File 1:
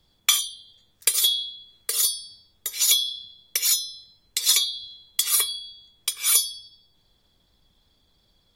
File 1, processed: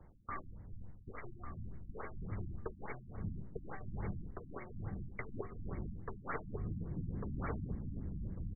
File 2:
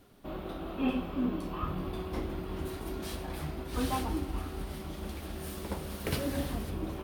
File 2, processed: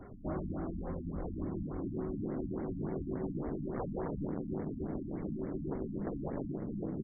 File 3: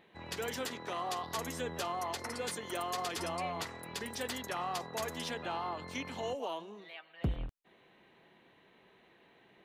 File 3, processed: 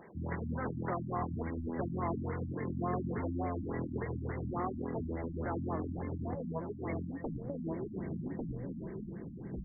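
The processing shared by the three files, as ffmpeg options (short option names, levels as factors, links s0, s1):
-filter_complex "[0:a]asubboost=boost=10.5:cutoff=230,aeval=exprs='0.75*(cos(1*acos(clip(val(0)/0.75,-1,1)))-cos(1*PI/2))+0.0335*(cos(5*acos(clip(val(0)/0.75,-1,1)))-cos(5*PI/2))+0.0299*(cos(8*acos(clip(val(0)/0.75,-1,1)))-cos(8*PI/2))':c=same,aresample=11025,aresample=44100,highshelf=f=2100:g=-6.5,acrossover=split=130[s0][s1];[s1]dynaudnorm=f=900:g=5:m=3.16[s2];[s0][s2]amix=inputs=2:normalize=0,asoftclip=type=hard:threshold=0.126,asplit=2[s3][s4];[s4]adelay=1148,lowpass=f=870:p=1,volume=0.2,asplit=2[s5][s6];[s6]adelay=1148,lowpass=f=870:p=1,volume=0.23,asplit=2[s7][s8];[s8]adelay=1148,lowpass=f=870:p=1,volume=0.23[s9];[s3][s5][s7][s9]amix=inputs=4:normalize=0,areverse,acompressor=threshold=0.0126:ratio=8,areverse,afftfilt=real='re*lt(hypot(re,im),0.0631)':imag='im*lt(hypot(re,im),0.0631)':win_size=1024:overlap=0.75,afftfilt=real='re*lt(b*sr/1024,290*pow(2300/290,0.5+0.5*sin(2*PI*3.5*pts/sr)))':imag='im*lt(b*sr/1024,290*pow(2300/290,0.5+0.5*sin(2*PI*3.5*pts/sr)))':win_size=1024:overlap=0.75,volume=2.82"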